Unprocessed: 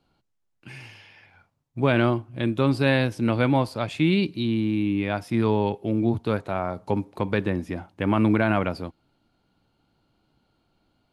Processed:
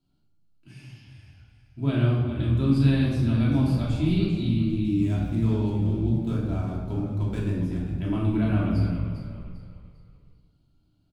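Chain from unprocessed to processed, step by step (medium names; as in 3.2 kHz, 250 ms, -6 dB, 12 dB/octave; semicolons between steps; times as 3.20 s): 4.84–7.56 s: median filter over 9 samples; graphic EQ 125/500/1000/2000 Hz +4/-9/-7/-10 dB; frequency-shifting echo 398 ms, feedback 36%, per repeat -45 Hz, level -10 dB; simulated room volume 740 m³, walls mixed, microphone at 2.9 m; trim -8.5 dB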